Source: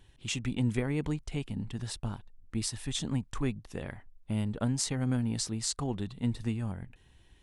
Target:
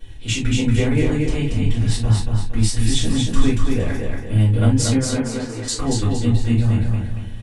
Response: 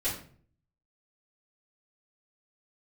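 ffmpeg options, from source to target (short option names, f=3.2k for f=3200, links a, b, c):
-filter_complex "[0:a]asettb=1/sr,asplit=3[a][b][c];[a]atrim=end=4.964[d];[b]atrim=start=4.96:end=5.68,asetpts=PTS-STARTPTS,afade=t=in:d=0.004:c=qsin,afade=t=out:st=0.716:d=0.004:c=qsin,acrossover=split=350 2300:gain=0.112 1 0.0631[e][f][g];[e][f][g]amix=inputs=3:normalize=0[h];[c]atrim=start=5.676[i];[d][h]acrossfade=d=0.004:c1=hsin:c2=qsin[j];[j][i]acrossfade=d=0.004:c1=qsin:c2=hsin,bandreject=f=780:w=16,asplit=2[k][l];[l]acompressor=threshold=-39dB:ratio=6,volume=2.5dB[m];[k][m]amix=inputs=2:normalize=0,aecho=1:1:232|464|696|928|1160:0.668|0.274|0.112|0.0461|0.0189[n];[1:a]atrim=start_sample=2205,afade=t=out:st=0.13:d=0.01,atrim=end_sample=6174[o];[n][o]afir=irnorm=-1:irlink=0,volume=1.5dB"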